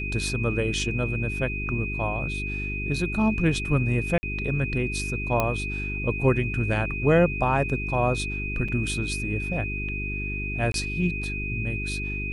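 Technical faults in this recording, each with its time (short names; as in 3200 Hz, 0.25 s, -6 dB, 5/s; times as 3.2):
hum 50 Hz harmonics 8 -32 dBFS
tone 2500 Hz -31 dBFS
4.18–4.23 gap 50 ms
5.4 pop -9 dBFS
8.68 gap 4.6 ms
10.72–10.74 gap 22 ms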